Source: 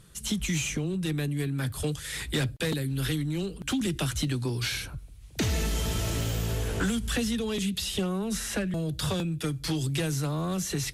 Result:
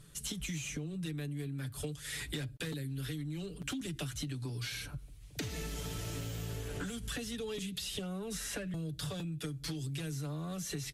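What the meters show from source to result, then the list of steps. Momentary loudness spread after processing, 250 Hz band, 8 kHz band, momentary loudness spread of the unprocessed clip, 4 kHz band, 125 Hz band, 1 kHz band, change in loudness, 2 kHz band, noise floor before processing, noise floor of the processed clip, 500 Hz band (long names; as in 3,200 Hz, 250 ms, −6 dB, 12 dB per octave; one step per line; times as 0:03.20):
2 LU, −10.5 dB, −8.5 dB, 3 LU, −9.0 dB, −9.5 dB, −11.5 dB, −9.5 dB, −9.5 dB, −45 dBFS, −51 dBFS, −10.0 dB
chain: parametric band 930 Hz −3 dB 0.77 octaves
comb filter 6.9 ms, depth 53%
downward compressor, threshold −33 dBFS, peak gain reduction 11.5 dB
level −3.5 dB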